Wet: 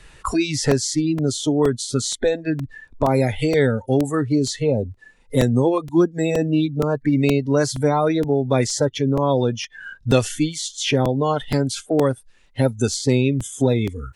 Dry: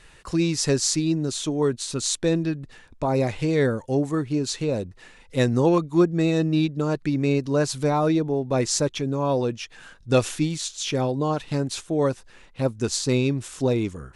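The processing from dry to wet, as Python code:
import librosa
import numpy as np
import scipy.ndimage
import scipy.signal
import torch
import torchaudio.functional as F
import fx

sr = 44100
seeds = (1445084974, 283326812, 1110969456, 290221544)

y = fx.peak_eq(x, sr, hz=2800.0, db=-5.5, octaves=2.8, at=(4.72, 7.13))
y = fx.noise_reduce_blind(y, sr, reduce_db=22)
y = fx.low_shelf(y, sr, hz=160.0, db=5.5)
y = fx.buffer_crackle(y, sr, first_s=0.71, period_s=0.47, block=128, kind='repeat')
y = fx.band_squash(y, sr, depth_pct=70)
y = F.gain(torch.from_numpy(y), 3.5).numpy()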